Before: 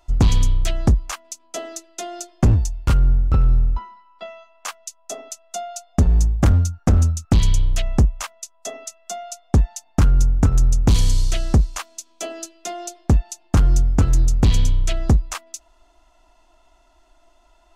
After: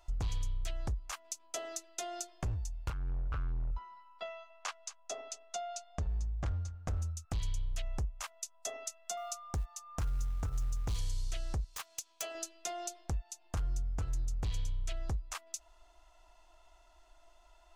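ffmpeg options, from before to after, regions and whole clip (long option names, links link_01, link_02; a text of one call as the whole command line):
ffmpeg -i in.wav -filter_complex "[0:a]asettb=1/sr,asplit=3[link_01][link_02][link_03];[link_01]atrim=end=2.904[link_04];[link_02]atrim=start=2.9:end=3.71,asetpts=PTS-STARTPTS,afade=type=in:duration=0.004:curve=qsin,afade=type=out:start_time=0.806:duration=0.004:curve=qsin,equalizer=frequency=770:width_type=o:width=2.6:gain=9.5,volume=18.5dB,asoftclip=hard,volume=-18.5dB,lowpass=frequency=3500:poles=1[link_05];[link_03]atrim=start=3.706[link_06];[link_04][link_05]acrossfade=duration=0.004:curve1=hsin:curve2=qsin[link_07];[link_07][link_06]acrossfade=duration=0.004:curve1=qsin:curve2=hsin,asettb=1/sr,asplit=3[link_08][link_09][link_10];[link_08]atrim=end=4.284[link_11];[link_09]atrim=start=4.28:end=6.88,asetpts=PTS-STARTPTS,afade=type=in:duration=0.004:curve=qsin,afade=type=out:start_time=2.596:duration=0.004:curve=qsin,lowpass=5700,aecho=1:1:221:0.075,atrim=end_sample=114660[link_12];[link_10]atrim=start=6.876[link_13];[link_11][link_12]acrossfade=duration=0.004:curve1=hsin:curve2=qsin[link_14];[link_14][link_13]acrossfade=duration=0.004:curve1=qsin:curve2=hsin,asettb=1/sr,asplit=3[link_15][link_16][link_17];[link_15]atrim=end=9.174[link_18];[link_16]atrim=start=9.17:end=10.99,asetpts=PTS-STARTPTS,afade=type=in:duration=0.004:curve=qsin,afade=type=out:start_time=1.816:duration=0.004:curve=qsin,acrusher=bits=8:mode=log:mix=0:aa=0.000001,aeval=exprs='val(0)+0.00891*sin(2*PI*1200*n/s)':channel_layout=same[link_19];[link_17]atrim=start=10.986[link_20];[link_18][link_19]acrossfade=duration=0.004:curve1=hsin:curve2=qsin[link_21];[link_21][link_20]acrossfade=duration=0.004:curve1=qsin:curve2=hsin,asettb=1/sr,asplit=3[link_22][link_23][link_24];[link_22]atrim=end=11.644[link_25];[link_23]atrim=start=11.64:end=12.35,asetpts=PTS-STARTPTS,afade=type=in:duration=0.004:curve=qsin,afade=type=out:start_time=0.706:duration=0.004:curve=qsin,lowshelf=frequency=480:gain=-10.5,aeval=exprs='(mod(11.2*val(0)+1,2)-1)/11.2':channel_layout=same[link_26];[link_24]atrim=start=12.346[link_27];[link_25][link_26]acrossfade=duration=0.004:curve1=hsin:curve2=qsin[link_28];[link_28][link_27]acrossfade=duration=0.004:curve1=qsin:curve2=hsin,acompressor=threshold=-31dB:ratio=3,equalizer=frequency=230:width_type=o:width=1.2:gain=-12,volume=-5dB" out.wav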